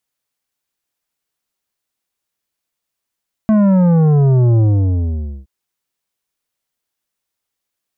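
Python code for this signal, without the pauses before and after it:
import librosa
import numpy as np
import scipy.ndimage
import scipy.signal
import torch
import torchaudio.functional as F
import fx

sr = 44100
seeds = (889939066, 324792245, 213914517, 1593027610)

y = fx.sub_drop(sr, level_db=-9.5, start_hz=220.0, length_s=1.97, drive_db=10.0, fade_s=0.87, end_hz=65.0)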